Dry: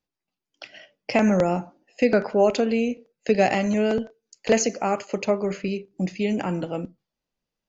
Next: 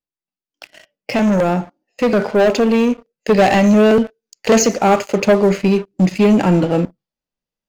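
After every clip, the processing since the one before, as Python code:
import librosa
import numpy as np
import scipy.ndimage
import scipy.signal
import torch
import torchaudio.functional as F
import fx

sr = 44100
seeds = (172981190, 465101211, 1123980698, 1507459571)

y = fx.hpss(x, sr, part='percussive', gain_db=-6)
y = fx.leveller(y, sr, passes=3)
y = fx.rider(y, sr, range_db=10, speed_s=2.0)
y = y * librosa.db_to_amplitude(2.0)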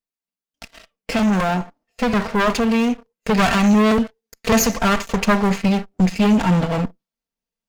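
y = fx.lower_of_two(x, sr, delay_ms=4.4)
y = fx.dynamic_eq(y, sr, hz=410.0, q=1.2, threshold_db=-27.0, ratio=4.0, max_db=-8)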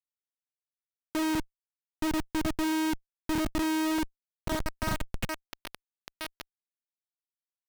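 y = fx.robotise(x, sr, hz=314.0)
y = fx.filter_sweep_bandpass(y, sr, from_hz=310.0, to_hz=3000.0, start_s=3.9, end_s=5.23, q=1.6)
y = fx.schmitt(y, sr, flips_db=-23.5)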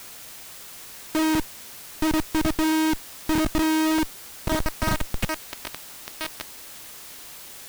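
y = fx.quant_dither(x, sr, seeds[0], bits=8, dither='triangular')
y = y * librosa.db_to_amplitude(6.5)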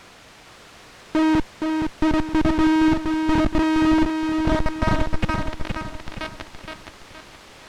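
y = fx.spacing_loss(x, sr, db_at_10k=22)
y = fx.echo_feedback(y, sr, ms=469, feedback_pct=42, wet_db=-5)
y = y * librosa.db_to_amplitude(5.0)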